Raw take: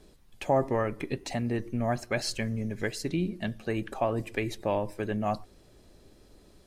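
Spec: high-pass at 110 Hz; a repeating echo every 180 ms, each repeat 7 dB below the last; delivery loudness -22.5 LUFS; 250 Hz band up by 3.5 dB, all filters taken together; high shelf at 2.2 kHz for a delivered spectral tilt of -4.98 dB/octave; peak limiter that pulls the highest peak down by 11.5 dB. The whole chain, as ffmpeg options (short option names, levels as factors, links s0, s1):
-af "highpass=110,equalizer=f=250:t=o:g=4.5,highshelf=f=2200:g=4,alimiter=limit=0.0794:level=0:latency=1,aecho=1:1:180|360|540|720|900:0.447|0.201|0.0905|0.0407|0.0183,volume=3.16"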